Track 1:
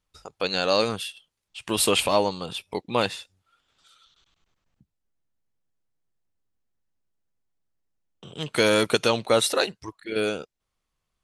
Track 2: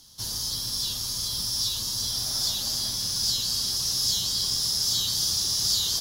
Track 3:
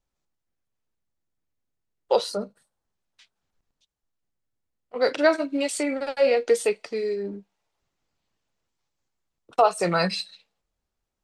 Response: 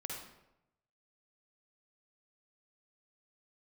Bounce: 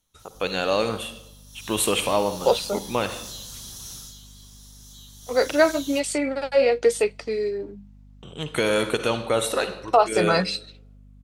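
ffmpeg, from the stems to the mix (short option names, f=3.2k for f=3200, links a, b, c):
-filter_complex "[0:a]volume=-1dB,asplit=2[a][b];[b]volume=-7.5dB[c];[1:a]volume=0.5dB,afade=t=in:st=1.47:d=0.35:silence=0.223872,afade=t=out:st=3.94:d=0.2:silence=0.266073,afade=t=in:st=5.21:d=0.24:silence=0.354813,asplit=2[d][e];[e]volume=-11.5dB[f];[2:a]bandreject=f=50:t=h:w=6,bandreject=f=100:t=h:w=6,bandreject=f=150:t=h:w=6,bandreject=f=200:t=h:w=6,aeval=exprs='val(0)+0.00355*(sin(2*PI*50*n/s)+sin(2*PI*2*50*n/s)/2+sin(2*PI*3*50*n/s)/3+sin(2*PI*4*50*n/s)/4+sin(2*PI*5*50*n/s)/5)':c=same,adelay=350,volume=1.5dB[g];[a][d]amix=inputs=2:normalize=0,asuperstop=centerf=4900:order=12:qfactor=3.5,alimiter=limit=-12.5dB:level=0:latency=1:release=383,volume=0dB[h];[3:a]atrim=start_sample=2205[i];[c][f]amix=inputs=2:normalize=0[j];[j][i]afir=irnorm=-1:irlink=0[k];[g][h][k]amix=inputs=3:normalize=0"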